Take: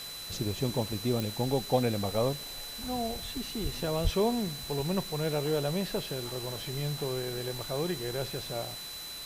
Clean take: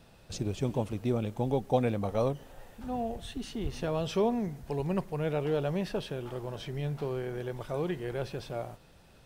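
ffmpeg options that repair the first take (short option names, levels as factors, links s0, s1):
-filter_complex "[0:a]adeclick=t=4,bandreject=f=4000:w=30,asplit=3[s0][s1][s2];[s0]afade=t=out:st=4.03:d=0.02[s3];[s1]highpass=f=140:w=0.5412,highpass=f=140:w=1.3066,afade=t=in:st=4.03:d=0.02,afade=t=out:st=4.15:d=0.02[s4];[s2]afade=t=in:st=4.15:d=0.02[s5];[s3][s4][s5]amix=inputs=3:normalize=0,afwtdn=0.0063"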